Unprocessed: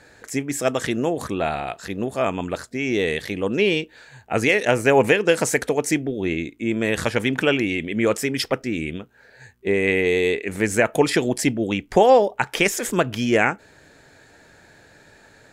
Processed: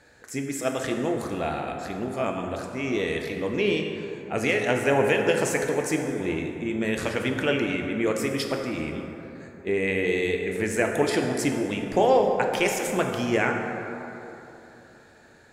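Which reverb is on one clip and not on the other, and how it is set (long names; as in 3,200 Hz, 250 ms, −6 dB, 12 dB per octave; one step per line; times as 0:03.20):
dense smooth reverb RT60 3.3 s, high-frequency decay 0.4×, DRR 2 dB
level −6.5 dB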